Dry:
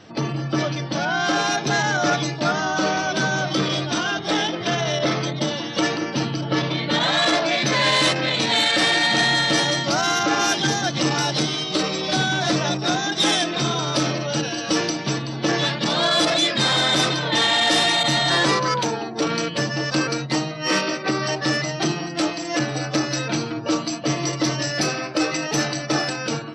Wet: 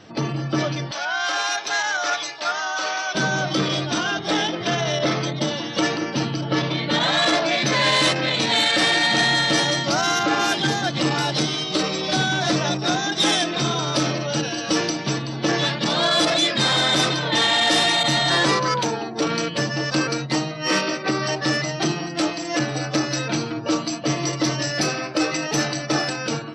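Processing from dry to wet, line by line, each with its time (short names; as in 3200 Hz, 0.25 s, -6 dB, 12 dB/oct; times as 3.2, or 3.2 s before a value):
0.91–3.15 HPF 850 Hz
10.19–11.35 bell 5800 Hz -8.5 dB 0.2 oct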